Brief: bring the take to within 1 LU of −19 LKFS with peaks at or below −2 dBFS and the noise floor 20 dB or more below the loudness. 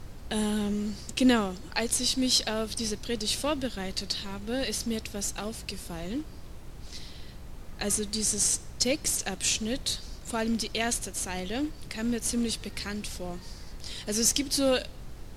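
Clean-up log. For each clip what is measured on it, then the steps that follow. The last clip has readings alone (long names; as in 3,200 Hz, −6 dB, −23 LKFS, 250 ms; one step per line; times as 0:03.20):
mains hum 60 Hz; hum harmonics up to 180 Hz; level of the hum −50 dBFS; background noise floor −44 dBFS; target noise floor −49 dBFS; integrated loudness −29.0 LKFS; sample peak −7.5 dBFS; target loudness −19.0 LKFS
→ hum removal 60 Hz, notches 3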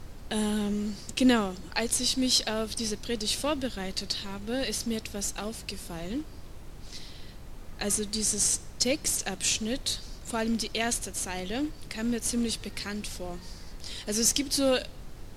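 mains hum none found; background noise floor −45 dBFS; target noise floor −49 dBFS
→ noise reduction from a noise print 6 dB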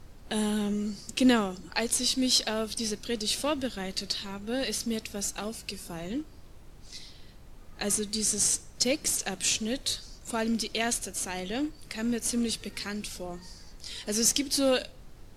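background noise floor −50 dBFS; integrated loudness −29.0 LKFS; sample peak −8.0 dBFS; target loudness −19.0 LKFS
→ level +10 dB
brickwall limiter −2 dBFS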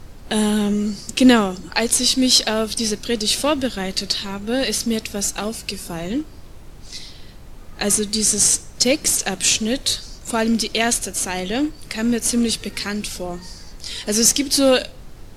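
integrated loudness −19.0 LKFS; sample peak −2.0 dBFS; background noise floor −40 dBFS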